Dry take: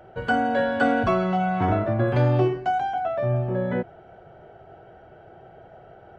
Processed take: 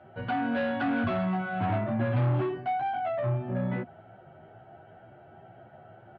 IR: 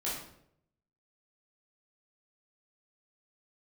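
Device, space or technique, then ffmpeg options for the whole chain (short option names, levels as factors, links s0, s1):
barber-pole flanger into a guitar amplifier: -filter_complex "[0:a]asplit=2[s0][s1];[s1]adelay=11.1,afreqshift=2.1[s2];[s0][s2]amix=inputs=2:normalize=1,asoftclip=type=tanh:threshold=0.0631,highpass=100,equalizer=f=110:t=q:w=4:g=8,equalizer=f=240:t=q:w=4:g=5,equalizer=f=450:t=q:w=4:g=-9,lowpass=f=3700:w=0.5412,lowpass=f=3700:w=1.3066"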